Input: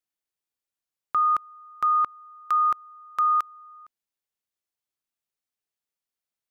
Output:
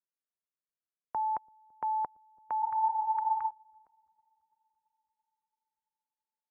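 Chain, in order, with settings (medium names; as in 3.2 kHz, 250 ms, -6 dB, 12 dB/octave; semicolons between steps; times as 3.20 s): spectral replace 2.64–3.47 s, 510–1400 Hz before; bass shelf 210 Hz -3 dB; band-stop 1.2 kHz, Q 12; in parallel at -4.5 dB: bit crusher 7-bit; on the sum: feedback echo behind a low-pass 336 ms, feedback 61%, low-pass 440 Hz, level -19 dB; mistuned SSB -360 Hz 460–2200 Hz; trim -8 dB; Vorbis 128 kbps 32 kHz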